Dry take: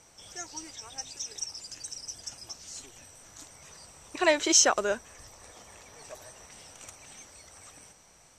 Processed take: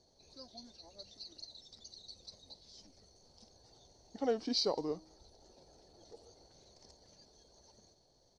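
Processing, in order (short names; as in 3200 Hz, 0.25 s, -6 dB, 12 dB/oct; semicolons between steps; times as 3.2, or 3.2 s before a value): high shelf 7700 Hz -11.5 dB; de-hum 421.6 Hz, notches 32; pitch shift -5 st; band shelf 1800 Hz -15 dB; gain -8 dB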